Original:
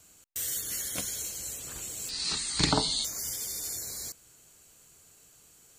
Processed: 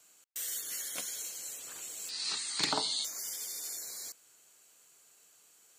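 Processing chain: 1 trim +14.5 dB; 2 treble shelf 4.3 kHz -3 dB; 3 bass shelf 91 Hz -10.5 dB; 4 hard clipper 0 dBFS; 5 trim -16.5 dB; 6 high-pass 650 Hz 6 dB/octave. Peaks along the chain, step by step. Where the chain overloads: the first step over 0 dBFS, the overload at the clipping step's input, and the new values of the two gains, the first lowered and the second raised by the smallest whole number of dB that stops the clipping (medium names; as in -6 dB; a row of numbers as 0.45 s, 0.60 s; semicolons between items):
+6.0 dBFS, +5.0 dBFS, +4.5 dBFS, 0.0 dBFS, -16.5 dBFS, -14.5 dBFS; step 1, 4.5 dB; step 1 +9.5 dB, step 5 -11.5 dB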